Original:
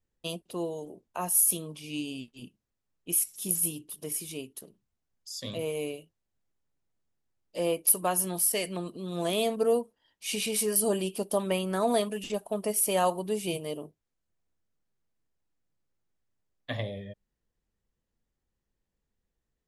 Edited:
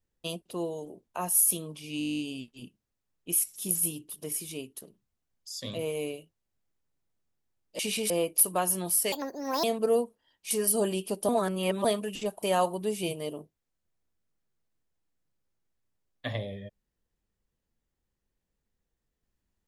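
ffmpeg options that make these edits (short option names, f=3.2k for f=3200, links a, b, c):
-filter_complex "[0:a]asplit=19[a][b][c][d][e][f][g][h][i][j][k][l][m][n][o][p][q][r][s];[a]atrim=end=2.012[t];[b]atrim=start=1.988:end=2.012[u];[c]atrim=start=1.988:end=2.012[v];[d]atrim=start=1.988:end=2.012[w];[e]atrim=start=1.988:end=2.012[x];[f]atrim=start=1.988:end=2.012[y];[g]atrim=start=1.988:end=2.012[z];[h]atrim=start=1.988:end=2.012[aa];[i]atrim=start=1.988:end=2.012[ab];[j]atrim=start=1.988:end=2.012[ac];[k]atrim=start=1.988:end=7.592[ad];[l]atrim=start=10.278:end=10.592[ae];[m]atrim=start=7.588:end=8.614[af];[n]atrim=start=8.61:end=9.41,asetpts=PTS-STARTPTS,asetrate=68355,aresample=44100,atrim=end_sample=22761,asetpts=PTS-STARTPTS[ag];[o]atrim=start=9.406:end=10.282[ah];[p]atrim=start=10.588:end=11.372[ai];[q]atrim=start=11.368:end=11.932,asetpts=PTS-STARTPTS,areverse[aj];[r]atrim=start=11.928:end=12.512[ak];[s]atrim=start=12.868[al];[t][u]acrossfade=d=0.004:c1=hsin:c2=hsin[am];[am][v]acrossfade=d=0.004:c1=hsin:c2=hsin[an];[an][w]acrossfade=d=0.004:c1=hsin:c2=hsin[ao];[ao][x]acrossfade=d=0.004:c1=hsin:c2=hsin[ap];[ap][y]acrossfade=d=0.004:c1=hsin:c2=hsin[aq];[aq][z]acrossfade=d=0.004:c1=hsin:c2=hsin[ar];[ar][aa]acrossfade=d=0.004:c1=hsin:c2=hsin[as];[as][ab]acrossfade=d=0.004:c1=hsin:c2=hsin[at];[at][ac]acrossfade=d=0.004:c1=hsin:c2=hsin[au];[au][ad]acrossfade=d=0.004:c1=hsin:c2=hsin[av];[av][ae]acrossfade=d=0.004:c1=hsin:c2=hsin[aw];[aw][af]acrossfade=d=0.004:c1=hsin:c2=hsin[ax];[ax][ag]acrossfade=d=0.004:c1=hsin:c2=hsin[ay];[ay][ah]acrossfade=d=0.004:c1=hsin:c2=hsin[az];[az][ai]acrossfade=d=0.004:c1=hsin:c2=hsin[ba];[ba][aj]acrossfade=d=0.004:c1=hsin:c2=hsin[bb];[bb][ak]acrossfade=d=0.004:c1=hsin:c2=hsin[bc];[bc][al]acrossfade=d=0.004:c1=hsin:c2=hsin"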